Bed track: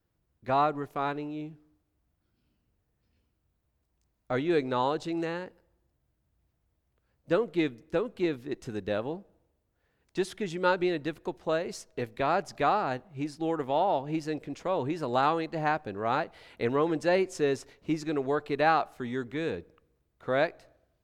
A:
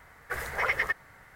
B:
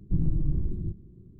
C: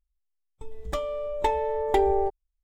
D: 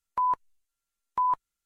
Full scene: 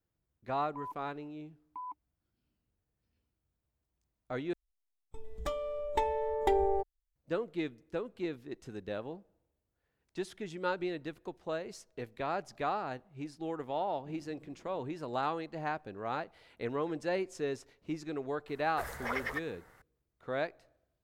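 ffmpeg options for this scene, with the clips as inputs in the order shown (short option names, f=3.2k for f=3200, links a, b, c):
-filter_complex "[0:a]volume=-8dB[a];[4:a]asplit=3[b][c][d];[b]bandpass=f=300:t=q:w=8,volume=0dB[e];[c]bandpass=f=870:t=q:w=8,volume=-6dB[f];[d]bandpass=f=2.24k:t=q:w=8,volume=-9dB[g];[e][f][g]amix=inputs=3:normalize=0[h];[2:a]highpass=520[i];[1:a]equalizer=f=2.2k:w=1.3:g=-6[j];[a]asplit=2[k][l];[k]atrim=end=4.534[m];[3:a]atrim=end=2.63,asetpts=PTS-STARTPTS,volume=-6dB[n];[l]atrim=start=7.156[o];[h]atrim=end=1.65,asetpts=PTS-STARTPTS,volume=-4.5dB,afade=t=in:d=0.004:c=hsin,afade=t=out:st=1.646:d=0.004:c=hsin,adelay=580[p];[i]atrim=end=1.39,asetpts=PTS-STARTPTS,volume=-8.5dB,afade=t=in:d=0.004:c=hsin,afade=t=out:st=1.386:d=0.004:c=hsin,adelay=13940[q];[j]atrim=end=1.35,asetpts=PTS-STARTPTS,volume=-5dB,afade=t=in:d=0.004:c=hsin,afade=t=out:st=1.346:d=0.004:c=hsin,adelay=18470[r];[m][n]acrossfade=d=0.004:c1=hsin:c2=hsin[s];[s][o]acrossfade=d=0.004:c1=hsin:c2=hsin[t];[t][p][q][r]amix=inputs=4:normalize=0"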